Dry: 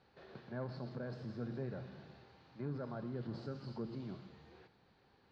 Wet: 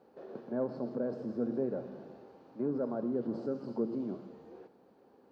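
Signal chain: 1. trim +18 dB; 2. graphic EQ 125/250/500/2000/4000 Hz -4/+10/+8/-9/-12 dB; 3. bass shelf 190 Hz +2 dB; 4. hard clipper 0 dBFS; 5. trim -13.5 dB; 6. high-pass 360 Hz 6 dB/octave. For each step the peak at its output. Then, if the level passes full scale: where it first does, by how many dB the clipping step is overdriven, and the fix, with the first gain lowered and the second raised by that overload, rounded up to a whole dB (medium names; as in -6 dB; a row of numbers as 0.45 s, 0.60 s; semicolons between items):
-14.0 dBFS, -5.0 dBFS, -4.5 dBFS, -4.5 dBFS, -18.0 dBFS, -21.0 dBFS; nothing clips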